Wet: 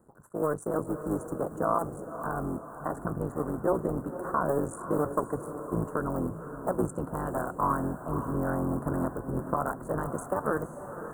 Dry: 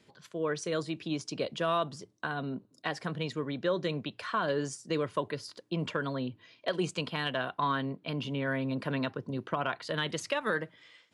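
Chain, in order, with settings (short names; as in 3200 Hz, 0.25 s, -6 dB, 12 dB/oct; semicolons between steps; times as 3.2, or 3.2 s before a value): cycle switcher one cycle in 3, muted; elliptic band-stop 1300–8400 Hz, stop band 40 dB; diffused feedback echo 0.531 s, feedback 48%, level -10 dB; gain +5 dB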